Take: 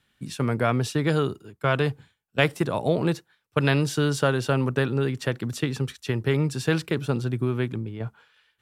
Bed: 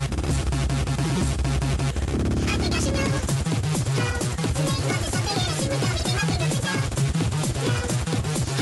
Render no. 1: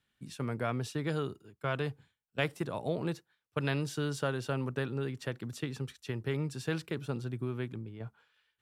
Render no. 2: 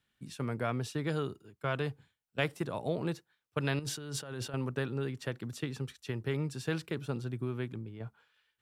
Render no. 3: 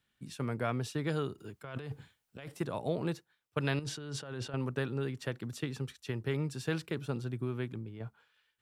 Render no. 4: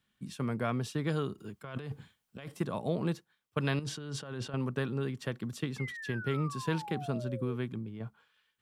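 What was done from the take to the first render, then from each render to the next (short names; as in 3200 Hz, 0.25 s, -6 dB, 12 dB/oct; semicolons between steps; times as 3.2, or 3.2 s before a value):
gain -10.5 dB
3.79–4.54 negative-ratio compressor -40 dBFS
1.38–2.48 negative-ratio compressor -42 dBFS; 3.84–4.6 air absorption 54 m
small resonant body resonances 200/1100/3200 Hz, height 7 dB; 5.78–7.56 painted sound fall 450–2200 Hz -43 dBFS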